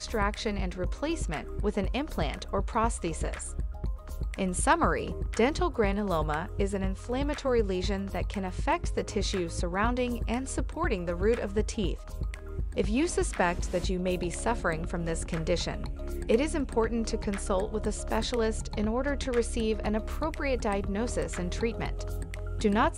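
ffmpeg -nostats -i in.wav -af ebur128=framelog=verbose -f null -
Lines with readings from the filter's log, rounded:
Integrated loudness:
  I:         -30.5 LUFS
  Threshold: -40.5 LUFS
Loudness range:
  LRA:         2.4 LU
  Threshold: -50.4 LUFS
  LRA low:   -31.5 LUFS
  LRA high:  -29.0 LUFS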